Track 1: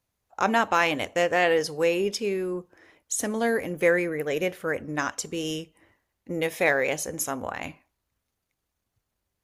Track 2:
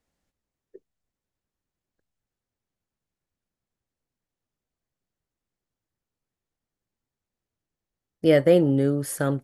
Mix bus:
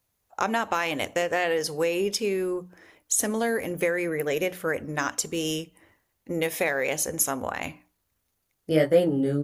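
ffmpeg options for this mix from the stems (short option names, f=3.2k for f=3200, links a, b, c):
-filter_complex "[0:a]acompressor=threshold=-23dB:ratio=10,volume=2dB[a];[1:a]flanger=delay=15.5:depth=4.9:speed=1.4,adelay=450,volume=0dB[b];[a][b]amix=inputs=2:normalize=0,highshelf=f=9.6k:g=9,bandreject=f=60:t=h:w=6,bandreject=f=120:t=h:w=6,bandreject=f=180:t=h:w=6,bandreject=f=240:t=h:w=6,bandreject=f=300:t=h:w=6"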